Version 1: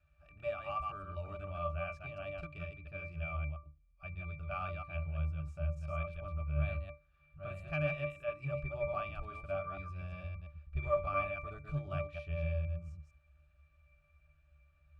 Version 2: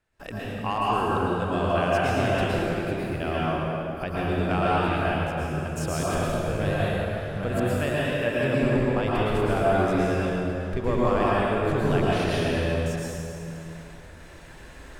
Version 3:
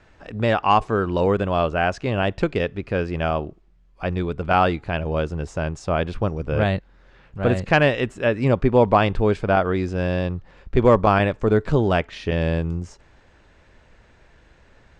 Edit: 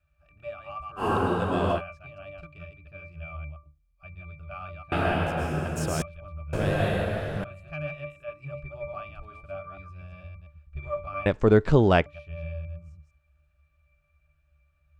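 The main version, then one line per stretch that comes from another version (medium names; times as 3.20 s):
1
1.01–1.77 s: from 2, crossfade 0.10 s
4.92–6.02 s: from 2
6.53–7.44 s: from 2
11.26–12.06 s: from 3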